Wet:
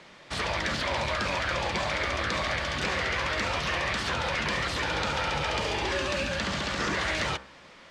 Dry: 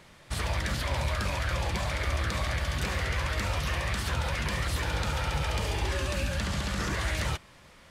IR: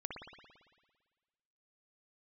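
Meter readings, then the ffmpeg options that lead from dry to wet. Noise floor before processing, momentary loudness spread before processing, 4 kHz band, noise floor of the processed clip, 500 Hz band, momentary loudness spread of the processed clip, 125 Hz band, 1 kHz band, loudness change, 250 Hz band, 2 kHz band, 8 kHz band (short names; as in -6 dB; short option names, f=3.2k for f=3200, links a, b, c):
-55 dBFS, 1 LU, +4.5 dB, -51 dBFS, +4.5 dB, 2 LU, -6.0 dB, +4.5 dB, +2.0 dB, +1.5 dB, +5.0 dB, -0.5 dB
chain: -filter_complex "[0:a]acrossover=split=180 6900:gain=0.2 1 0.0708[a][b][c];[a][b][c]amix=inputs=3:normalize=0,bandreject=f=66.24:t=h:w=4,bandreject=f=132.48:t=h:w=4,bandreject=f=198.72:t=h:w=4,bandreject=f=264.96:t=h:w=4,bandreject=f=331.2:t=h:w=4,bandreject=f=397.44:t=h:w=4,bandreject=f=463.68:t=h:w=4,bandreject=f=529.92:t=h:w=4,bandreject=f=596.16:t=h:w=4,bandreject=f=662.4:t=h:w=4,bandreject=f=728.64:t=h:w=4,bandreject=f=794.88:t=h:w=4,bandreject=f=861.12:t=h:w=4,bandreject=f=927.36:t=h:w=4,bandreject=f=993.6:t=h:w=4,bandreject=f=1.05984k:t=h:w=4,bandreject=f=1.12608k:t=h:w=4,bandreject=f=1.19232k:t=h:w=4,bandreject=f=1.25856k:t=h:w=4,bandreject=f=1.3248k:t=h:w=4,bandreject=f=1.39104k:t=h:w=4,bandreject=f=1.45728k:t=h:w=4,bandreject=f=1.52352k:t=h:w=4,bandreject=f=1.58976k:t=h:w=4,bandreject=f=1.656k:t=h:w=4,bandreject=f=1.72224k:t=h:w=4,bandreject=f=1.78848k:t=h:w=4,volume=5dB"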